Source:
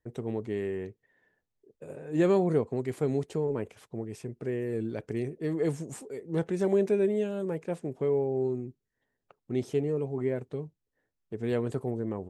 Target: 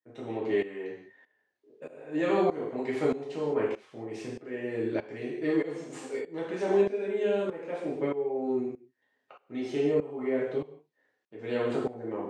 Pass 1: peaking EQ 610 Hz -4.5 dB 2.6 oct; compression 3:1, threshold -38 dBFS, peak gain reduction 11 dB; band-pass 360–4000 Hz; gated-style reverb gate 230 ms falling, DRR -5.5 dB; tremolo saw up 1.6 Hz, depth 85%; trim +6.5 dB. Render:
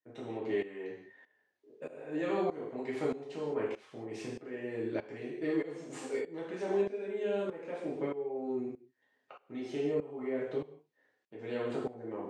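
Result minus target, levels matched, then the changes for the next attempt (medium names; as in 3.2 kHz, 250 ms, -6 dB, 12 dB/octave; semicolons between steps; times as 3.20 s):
compression: peak gain reduction +6.5 dB
change: compression 3:1, threshold -28 dBFS, peak gain reduction 4.5 dB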